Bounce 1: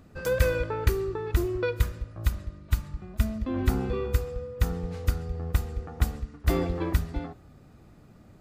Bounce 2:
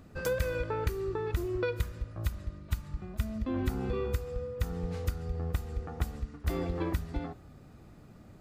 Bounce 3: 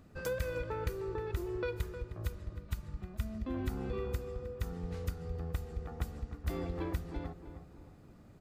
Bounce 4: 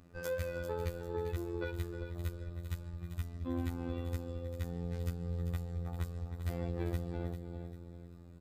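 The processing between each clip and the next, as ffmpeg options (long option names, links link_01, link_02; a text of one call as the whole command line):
ffmpeg -i in.wav -af "acompressor=threshold=-28dB:ratio=4" out.wav
ffmpeg -i in.wav -filter_complex "[0:a]asplit=2[link_01][link_02];[link_02]adelay=310,lowpass=frequency=1800:poles=1,volume=-10dB,asplit=2[link_03][link_04];[link_04]adelay=310,lowpass=frequency=1800:poles=1,volume=0.47,asplit=2[link_05][link_06];[link_06]adelay=310,lowpass=frequency=1800:poles=1,volume=0.47,asplit=2[link_07][link_08];[link_08]adelay=310,lowpass=frequency=1800:poles=1,volume=0.47,asplit=2[link_09][link_10];[link_10]adelay=310,lowpass=frequency=1800:poles=1,volume=0.47[link_11];[link_01][link_03][link_05][link_07][link_09][link_11]amix=inputs=6:normalize=0,volume=-5dB" out.wav
ffmpeg -i in.wav -af "afftfilt=real='hypot(re,im)*cos(PI*b)':imag='0':win_size=2048:overlap=0.75,aecho=1:1:395|790|1185|1580:0.335|0.127|0.0484|0.0184,volume=1dB" out.wav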